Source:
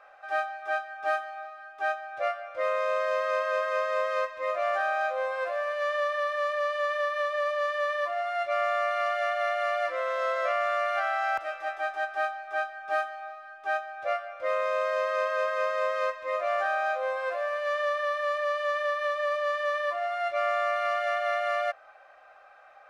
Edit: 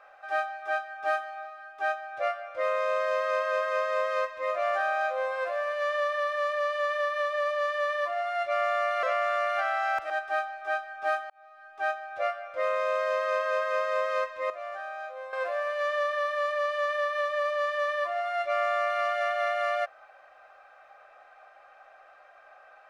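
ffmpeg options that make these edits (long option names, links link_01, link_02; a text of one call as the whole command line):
ffmpeg -i in.wav -filter_complex "[0:a]asplit=6[link_01][link_02][link_03][link_04][link_05][link_06];[link_01]atrim=end=9.032[link_07];[link_02]atrim=start=10.418:end=11.492[link_08];[link_03]atrim=start=11.958:end=13.16,asetpts=PTS-STARTPTS,afade=type=out:start_time=1.198:duration=0.004:curve=hsin[link_09];[link_04]atrim=start=13.16:end=16.362,asetpts=PTS-STARTPTS,afade=type=in:duration=0.57[link_10];[link_05]atrim=start=16.358:end=17.192,asetpts=PTS-STARTPTS,volume=-10dB[link_11];[link_06]atrim=start=17.188[link_12];[link_07][link_08]acrossfade=duration=0.004:curve1=hsin:curve2=hsin[link_13];[link_09][link_10]concat=n=2:v=0:a=1[link_14];[link_13][link_14]acrossfade=duration=0.004:curve1=hsin:curve2=hsin[link_15];[link_15][link_11]acrossfade=duration=0.004:curve1=hsin:curve2=hsin[link_16];[link_16][link_12]acrossfade=duration=0.004:curve1=hsin:curve2=hsin" out.wav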